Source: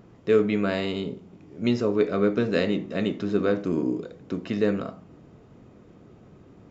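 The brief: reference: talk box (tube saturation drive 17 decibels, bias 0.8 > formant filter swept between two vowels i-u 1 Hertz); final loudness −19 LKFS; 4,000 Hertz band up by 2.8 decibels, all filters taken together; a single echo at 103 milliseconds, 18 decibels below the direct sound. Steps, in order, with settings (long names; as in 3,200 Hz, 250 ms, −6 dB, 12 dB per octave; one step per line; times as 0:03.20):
parametric band 4,000 Hz +3.5 dB
single-tap delay 103 ms −18 dB
tube saturation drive 17 dB, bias 0.8
formant filter swept between two vowels i-u 1 Hz
level +22.5 dB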